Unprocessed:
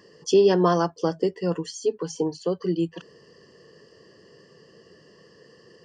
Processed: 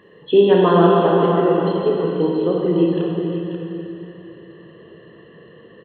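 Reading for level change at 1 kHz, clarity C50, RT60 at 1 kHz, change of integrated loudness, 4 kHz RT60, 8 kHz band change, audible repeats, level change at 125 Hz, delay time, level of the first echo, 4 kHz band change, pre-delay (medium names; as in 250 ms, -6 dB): +8.5 dB, -2.0 dB, 2.7 s, +7.0 dB, 2.4 s, under -40 dB, 1, +9.0 dB, 537 ms, -7.5 dB, +4.5 dB, 21 ms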